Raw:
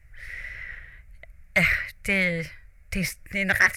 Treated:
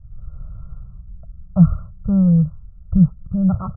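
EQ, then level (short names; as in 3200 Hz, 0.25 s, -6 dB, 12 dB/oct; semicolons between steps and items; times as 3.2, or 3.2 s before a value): brick-wall FIR low-pass 1400 Hz; resonant low shelf 240 Hz +11.5 dB, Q 3; 0.0 dB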